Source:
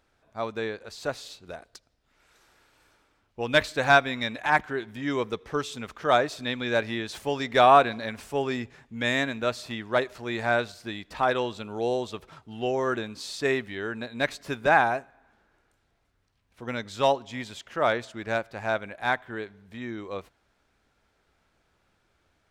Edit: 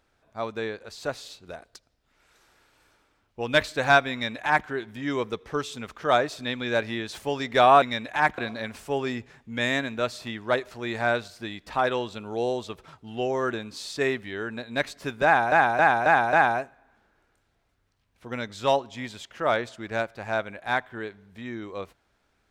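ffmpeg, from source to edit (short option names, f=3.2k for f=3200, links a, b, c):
-filter_complex "[0:a]asplit=7[a][b][c][d][e][f][g];[a]atrim=end=7.822[h];[b]atrim=start=4.118:end=4.682[i];[c]atrim=start=7.818:end=14.962[j];[d]atrim=start=14.688:end=14.962[k];[e]atrim=start=14.688:end=14.962[l];[f]atrim=start=14.688:end=14.962[m];[g]atrim=start=14.688[n];[h][i]acrossfade=d=0.004:c1=hsin:c2=hsin[o];[o][j]acrossfade=d=0.004:c1=hsin:c2=hsin[p];[p][k]acrossfade=d=0.004:c1=hsin:c2=hsin[q];[q][l]acrossfade=d=0.004:c1=hsin:c2=hsin[r];[r][m]acrossfade=d=0.004:c1=hsin:c2=hsin[s];[s][n]acrossfade=d=0.004:c1=hsin:c2=hsin"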